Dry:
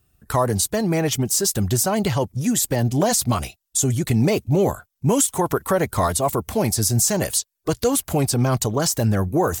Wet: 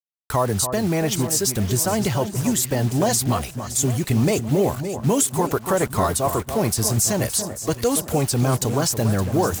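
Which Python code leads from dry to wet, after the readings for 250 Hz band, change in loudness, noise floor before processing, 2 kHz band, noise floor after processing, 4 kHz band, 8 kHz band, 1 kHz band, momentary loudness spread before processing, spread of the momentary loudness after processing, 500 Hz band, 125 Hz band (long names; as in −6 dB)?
−0.5 dB, −0.5 dB, −78 dBFS, −0.5 dB, −39 dBFS, −0.5 dB, −0.5 dB, −0.5 dB, 4 LU, 4 LU, −0.5 dB, −0.5 dB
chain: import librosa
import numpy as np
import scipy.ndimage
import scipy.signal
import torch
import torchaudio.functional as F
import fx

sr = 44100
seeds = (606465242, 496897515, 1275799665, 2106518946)

y = fx.quant_dither(x, sr, seeds[0], bits=6, dither='none')
y = fx.echo_alternate(y, sr, ms=284, hz=1600.0, feedback_pct=68, wet_db=-9.0)
y = F.gain(torch.from_numpy(y), -1.0).numpy()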